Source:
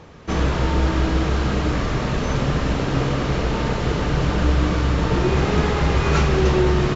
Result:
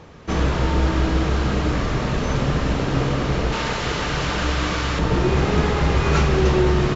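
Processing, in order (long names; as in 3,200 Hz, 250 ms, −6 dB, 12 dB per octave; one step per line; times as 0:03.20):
0:03.52–0:04.99: tilt shelving filter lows −6 dB, about 740 Hz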